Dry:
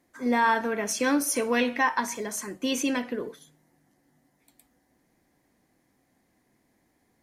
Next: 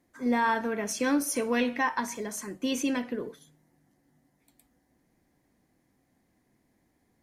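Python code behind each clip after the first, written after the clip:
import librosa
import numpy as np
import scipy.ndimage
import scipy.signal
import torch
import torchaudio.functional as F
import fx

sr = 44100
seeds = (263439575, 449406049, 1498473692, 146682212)

y = fx.low_shelf(x, sr, hz=270.0, db=6.0)
y = y * librosa.db_to_amplitude(-4.0)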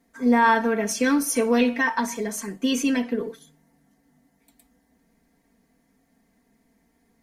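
y = x + 0.8 * np.pad(x, (int(4.4 * sr / 1000.0), 0))[:len(x)]
y = y * librosa.db_to_amplitude(3.0)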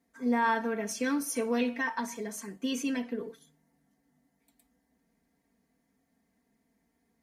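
y = scipy.signal.sosfilt(scipy.signal.butter(2, 43.0, 'highpass', fs=sr, output='sos'), x)
y = y * librosa.db_to_amplitude(-9.0)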